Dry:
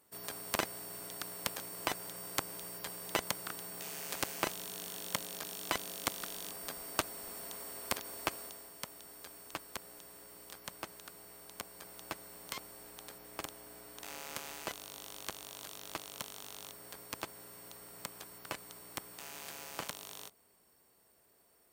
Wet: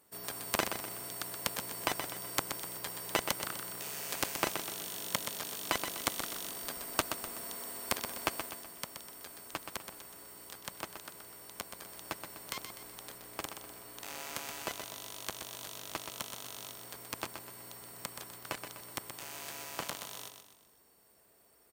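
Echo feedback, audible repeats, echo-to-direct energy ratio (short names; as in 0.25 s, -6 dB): 43%, 4, -6.5 dB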